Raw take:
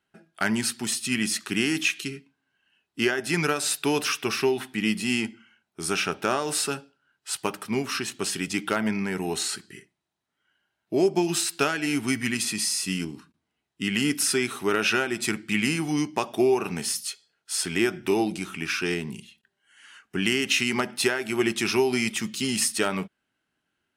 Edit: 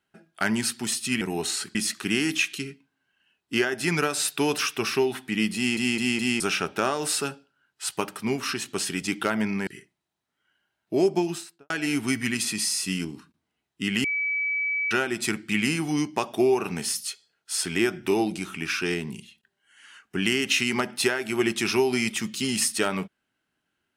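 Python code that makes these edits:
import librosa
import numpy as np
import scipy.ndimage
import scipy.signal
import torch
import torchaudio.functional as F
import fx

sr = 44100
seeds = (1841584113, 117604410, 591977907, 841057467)

y = fx.studio_fade_out(x, sr, start_s=11.08, length_s=0.62)
y = fx.edit(y, sr, fx.stutter_over(start_s=5.02, slice_s=0.21, count=4),
    fx.move(start_s=9.13, length_s=0.54, to_s=1.21),
    fx.bleep(start_s=14.04, length_s=0.87, hz=2290.0, db=-23.5), tone=tone)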